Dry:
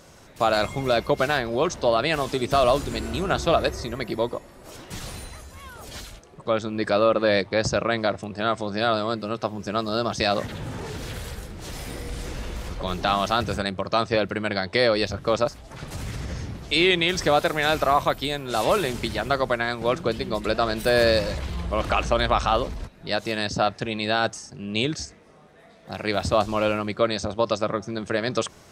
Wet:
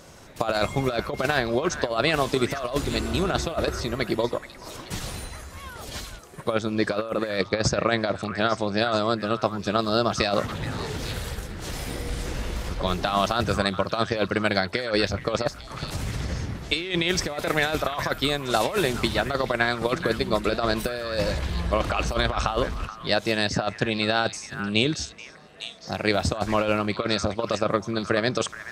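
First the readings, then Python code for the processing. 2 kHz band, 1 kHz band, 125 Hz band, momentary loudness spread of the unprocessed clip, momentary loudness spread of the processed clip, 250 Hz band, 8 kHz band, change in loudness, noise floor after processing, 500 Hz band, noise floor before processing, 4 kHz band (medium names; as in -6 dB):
0.0 dB, -2.5 dB, +1.5 dB, 15 LU, 10 LU, +0.5 dB, +1.5 dB, -1.5 dB, -43 dBFS, -2.5 dB, -50 dBFS, -0.5 dB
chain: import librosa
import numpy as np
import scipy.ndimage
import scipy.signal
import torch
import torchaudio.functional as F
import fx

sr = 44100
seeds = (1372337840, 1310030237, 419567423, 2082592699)

y = fx.over_compress(x, sr, threshold_db=-23.0, ratio=-0.5)
y = fx.echo_stepped(y, sr, ms=427, hz=1500.0, octaves=1.4, feedback_pct=70, wet_db=-7.0)
y = fx.transient(y, sr, attack_db=3, sustain_db=-1)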